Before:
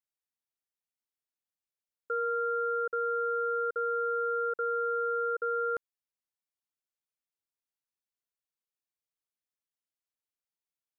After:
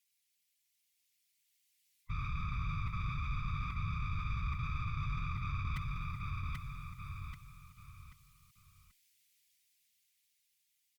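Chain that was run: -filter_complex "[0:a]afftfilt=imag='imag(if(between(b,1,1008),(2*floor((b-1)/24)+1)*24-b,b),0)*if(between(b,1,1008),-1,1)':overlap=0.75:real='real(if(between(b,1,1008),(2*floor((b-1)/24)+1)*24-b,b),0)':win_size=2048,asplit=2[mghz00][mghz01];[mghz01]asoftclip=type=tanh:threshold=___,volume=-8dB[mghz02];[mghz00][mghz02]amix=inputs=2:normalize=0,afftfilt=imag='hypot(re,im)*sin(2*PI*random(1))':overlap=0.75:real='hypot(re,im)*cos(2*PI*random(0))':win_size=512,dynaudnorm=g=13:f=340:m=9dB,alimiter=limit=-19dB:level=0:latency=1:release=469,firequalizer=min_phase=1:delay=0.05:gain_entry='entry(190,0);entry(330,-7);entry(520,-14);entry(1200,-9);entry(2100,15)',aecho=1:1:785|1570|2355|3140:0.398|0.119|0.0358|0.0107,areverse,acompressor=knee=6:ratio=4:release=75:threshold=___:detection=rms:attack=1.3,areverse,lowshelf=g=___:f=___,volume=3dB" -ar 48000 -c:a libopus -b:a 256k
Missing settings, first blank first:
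-33dB, -41dB, 5, 240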